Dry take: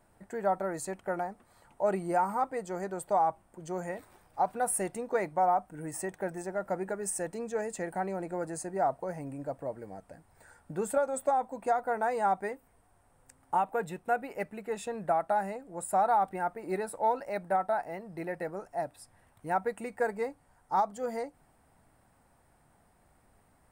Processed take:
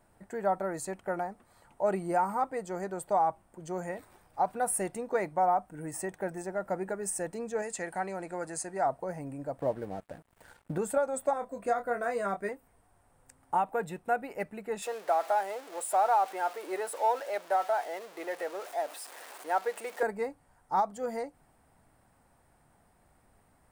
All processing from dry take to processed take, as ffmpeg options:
-filter_complex "[0:a]asettb=1/sr,asplit=3[s0][s1][s2];[s0]atrim=end=7.624[s3];[s1]atrim=start=7.62:end=8.86,asetpts=PTS-STARTPTS,afade=t=in:d=0.004:c=qsin,afade=t=out:st=1.236:d=0.004:c=qsin,lowpass=11000,tiltshelf=f=830:g=-5[s4];[s2]atrim=start=8.856[s5];[s3][s4]acrossfade=d=0.004:c1=hsin:c2=qsin[s6];[s6][s5]acrossfade=d=0.004:c1=qsin:c2=hsin,asettb=1/sr,asplit=3[s7][s8][s9];[s7]atrim=end=9.594[s10];[s8]atrim=start=9.59:end=10.78,asetpts=PTS-STARTPTS,afade=t=in:d=0.004:c=qsin,afade=t=out:st=1.186:d=0.004:c=qsin,equalizer=f=6100:t=o:w=2.3:g=-5.5,acontrast=76,aeval=exprs='sgn(val(0))*max(abs(val(0))-0.00188,0)':c=same[s11];[s9]atrim=start=10.776[s12];[s10][s11]acrossfade=d=0.004:c1=hsin:c2=qsin[s13];[s13][s12]acrossfade=d=0.004:c1=qsin:c2=hsin,asettb=1/sr,asplit=3[s14][s15][s16];[s14]atrim=end=11.334[s17];[s15]atrim=start=11.33:end=12.49,asetpts=PTS-STARTPTS,afade=t=in:d=0.004:c=qsin,afade=t=out:st=1.156:d=0.004:c=qsin,asuperstop=centerf=850:order=4:qfactor=3,asplit=2[s18][s19];[s19]adelay=25,volume=0.447[s20];[s18][s20]amix=inputs=2:normalize=0,atrim=end_sample=51156[s21];[s16]atrim=start=12.486[s22];[s17][s21]acrossfade=d=0.004:c1=hsin:c2=qsin[s23];[s23][s22]acrossfade=d=0.004:c1=qsin:c2=hsin,asettb=1/sr,asplit=3[s24][s25][s26];[s24]atrim=end=14.824[s27];[s25]atrim=start=14.82:end=20.03,asetpts=PTS-STARTPTS,afade=t=in:d=0.004:c=qsin,afade=t=out:st=5.206:d=0.004:c=qsin,aeval=exprs='val(0)+0.5*0.01*sgn(val(0))':c=same,highpass=f=390:w=0.5412,highpass=f=390:w=1.3066[s28];[s26]atrim=start=20.026[s29];[s27][s28]acrossfade=d=0.004:c1=hsin:c2=qsin[s30];[s30][s29]acrossfade=d=0.004:c1=qsin:c2=hsin"

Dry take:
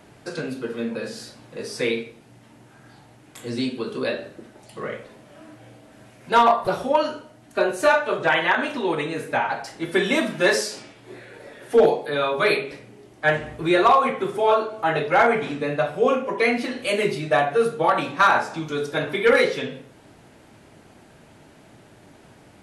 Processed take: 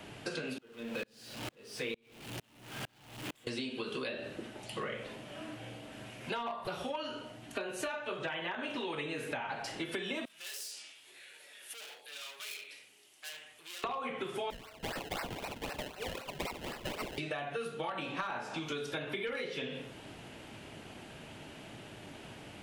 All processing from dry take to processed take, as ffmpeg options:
-filter_complex "[0:a]asettb=1/sr,asplit=3[s0][s1][s2];[s0]atrim=end=0.584[s3];[s1]atrim=start=0.58:end=3.47,asetpts=PTS-STARTPTS,afade=t=in:d=0.004:c=qsin,afade=t=out:st=2.886:d=0.004:c=qsin,aeval=exprs='val(0)+0.5*0.0237*sgn(val(0))':c=same,aeval=exprs='val(0)*pow(10,-37*if(lt(mod(-2.2*n/s,1),2*abs(-2.2)/1000),1-mod(-2.2*n/s,1)/(2*abs(-2.2)/1000),(mod(-2.2*n/s,1)-2*abs(-2.2)/1000)/(1-2*abs(-2.2)/1000))/20)':c=same[s4];[s2]atrim=start=3.466[s5];[s3][s4]acrossfade=d=0.004:c1=hsin:c2=qsin[s6];[s6][s5]acrossfade=d=0.004:c1=qsin:c2=hsin,asettb=1/sr,asplit=3[s7][s8][s9];[s7]atrim=end=10.254[s10];[s8]atrim=start=10.25:end=13.84,asetpts=PTS-STARTPTS,afade=t=in:d=0.004:c=qsin,afade=t=out:st=3.586:d=0.004:c=qsin,volume=23.7,asoftclip=hard,volume=0.0422,acompressor=threshold=0.0126:ratio=2.5:attack=3.2:release=140:knee=1:detection=peak,aderivative[s11];[s9]atrim=start=13.836[s12];[s10][s11]acrossfade=d=0.004:c1=hsin:c2=qsin[s13];[s13][s12]acrossfade=d=0.004:c1=qsin:c2=hsin,asettb=1/sr,asplit=3[s14][s15][s16];[s14]atrim=end=14.504[s17];[s15]atrim=start=14.5:end=17.18,asetpts=PTS-STARTPTS,afade=t=in:d=0.004:c=qsin,afade=t=out:st=2.676:d=0.004:c=qsin,bandpass=f=2500:t=q:w=2.3,acrusher=samples=26:mix=1:aa=0.000001:lfo=1:lforange=26:lforate=3.9[s18];[s16]atrim=start=17.176[s19];[s17][s18]acrossfade=d=0.004:c1=hsin:c2=qsin[s20];[s20][s19]acrossfade=d=0.004:c1=qsin:c2=hsin,acompressor=threshold=0.0282:ratio=4,equalizer=f=2900:w=2.1:g=9,acrossover=split=310|970[s21][s22][s23];[s21]acompressor=threshold=0.00562:ratio=4[s24];[s22]acompressor=threshold=0.00891:ratio=4[s25];[s23]acompressor=threshold=0.01:ratio=4[s26];[s24][s25][s26]amix=inputs=3:normalize=0"

